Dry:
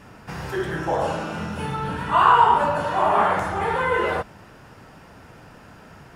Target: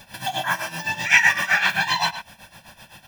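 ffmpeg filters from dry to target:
ffmpeg -i in.wav -filter_complex "[0:a]equalizer=frequency=140:width=4:gain=-13.5,aecho=1:1:2.4:0.96,asplit=2[link_01][link_02];[link_02]adelay=210,highpass=300,lowpass=3400,asoftclip=type=hard:threshold=-11.5dB,volume=-10dB[link_03];[link_01][link_03]amix=inputs=2:normalize=0,crystalizer=i=2.5:c=0,tremolo=f=3.9:d=0.79,asetrate=88200,aresample=44100" out.wav

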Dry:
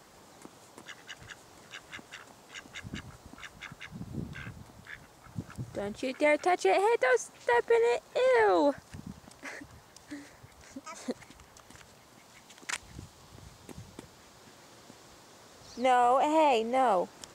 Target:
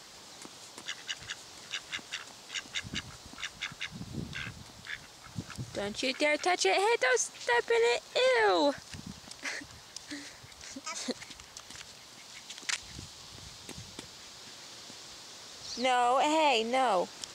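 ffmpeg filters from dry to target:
ffmpeg -i in.wav -af "equalizer=frequency=4400:width_type=o:width=2.2:gain=13.5,alimiter=limit=-17dB:level=0:latency=1:release=24,volume=-1dB" out.wav

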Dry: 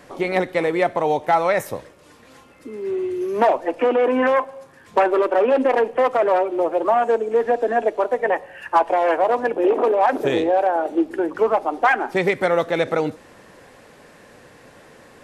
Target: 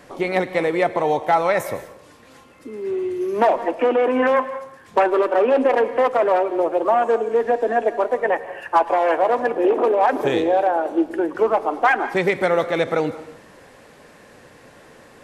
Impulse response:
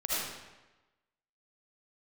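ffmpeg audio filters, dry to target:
-filter_complex "[0:a]asplit=2[link_01][link_02];[1:a]atrim=start_sample=2205,asetrate=74970,aresample=44100,adelay=108[link_03];[link_02][link_03]afir=irnorm=-1:irlink=0,volume=-16.5dB[link_04];[link_01][link_04]amix=inputs=2:normalize=0"

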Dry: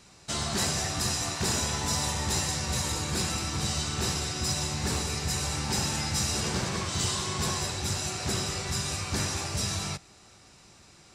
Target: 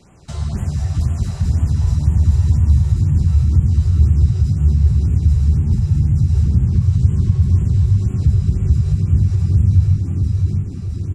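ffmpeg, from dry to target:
ffmpeg -i in.wav -filter_complex "[0:a]asubboost=boost=12:cutoff=190,asplit=4[link_01][link_02][link_03][link_04];[link_02]adelay=248,afreqshift=89,volume=-21dB[link_05];[link_03]adelay=496,afreqshift=178,volume=-28.1dB[link_06];[link_04]adelay=744,afreqshift=267,volume=-35.3dB[link_07];[link_01][link_05][link_06][link_07]amix=inputs=4:normalize=0,acompressor=threshold=-22dB:ratio=3,aecho=1:1:661|1322|1983|2644|3305:0.631|0.259|0.106|0.0435|0.0178,acrossover=split=130[link_08][link_09];[link_09]acompressor=threshold=-39dB:ratio=3[link_10];[link_08][link_10]amix=inputs=2:normalize=0,tiltshelf=frequency=1100:gain=6.5,afftfilt=real='re*(1-between(b*sr/1024,220*pow(4900/220,0.5+0.5*sin(2*PI*2*pts/sr))/1.41,220*pow(4900/220,0.5+0.5*sin(2*PI*2*pts/sr))*1.41))':imag='im*(1-between(b*sr/1024,220*pow(4900/220,0.5+0.5*sin(2*PI*2*pts/sr))/1.41,220*pow(4900/220,0.5+0.5*sin(2*PI*2*pts/sr))*1.41))':win_size=1024:overlap=0.75,volume=4dB" out.wav

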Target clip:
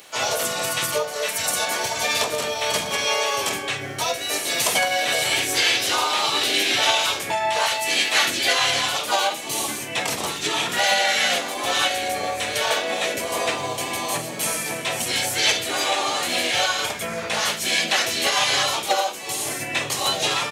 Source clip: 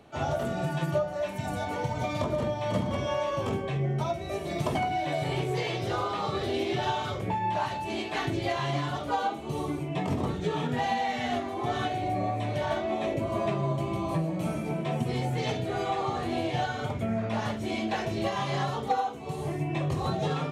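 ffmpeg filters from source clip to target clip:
ffmpeg -i in.wav -filter_complex "[0:a]highpass=frequency=1400:poles=1,asplit=2[link_01][link_02];[link_02]asetrate=33038,aresample=44100,atempo=1.33484,volume=-2dB[link_03];[link_01][link_03]amix=inputs=2:normalize=0,crystalizer=i=6.5:c=0,volume=7.5dB" out.wav

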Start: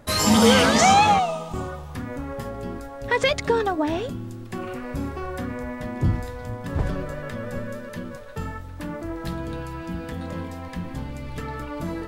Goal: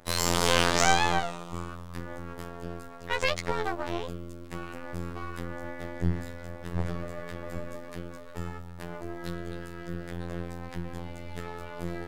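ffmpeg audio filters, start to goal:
ffmpeg -i in.wav -af "afftfilt=real='hypot(re,im)*cos(PI*b)':imag='0':win_size=2048:overlap=0.75,aeval=exprs='max(val(0),0)':channel_layout=same,bandreject=frequency=51.46:width_type=h:width=4,bandreject=frequency=102.92:width_type=h:width=4,bandreject=frequency=154.38:width_type=h:width=4,bandreject=frequency=205.84:width_type=h:width=4,bandreject=frequency=257.3:width_type=h:width=4,volume=-1dB" out.wav

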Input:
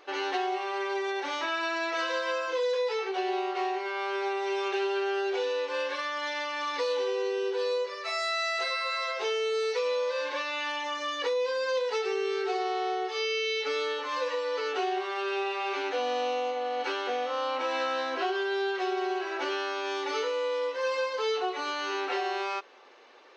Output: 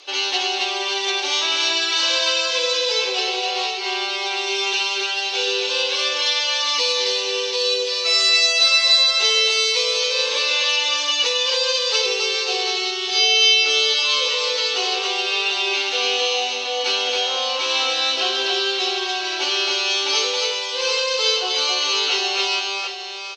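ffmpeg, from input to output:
ffmpeg -i in.wav -filter_complex "[0:a]aexciter=amount=8.4:drive=4.3:freq=2600,highpass=310,lowpass=6800,asplit=2[link_01][link_02];[link_02]aecho=0:1:63|273|741:0.282|0.708|0.422[link_03];[link_01][link_03]amix=inputs=2:normalize=0,volume=1.5dB" out.wav

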